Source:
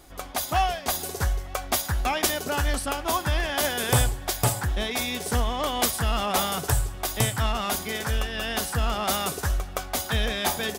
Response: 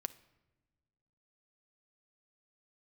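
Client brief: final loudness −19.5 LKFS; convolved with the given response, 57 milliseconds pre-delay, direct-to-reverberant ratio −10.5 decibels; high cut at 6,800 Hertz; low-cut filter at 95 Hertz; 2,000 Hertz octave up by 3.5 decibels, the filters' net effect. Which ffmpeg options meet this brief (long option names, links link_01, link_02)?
-filter_complex "[0:a]highpass=95,lowpass=6800,equalizer=frequency=2000:width_type=o:gain=4.5,asplit=2[link_01][link_02];[1:a]atrim=start_sample=2205,adelay=57[link_03];[link_02][link_03]afir=irnorm=-1:irlink=0,volume=12.5dB[link_04];[link_01][link_04]amix=inputs=2:normalize=0,volume=-4dB"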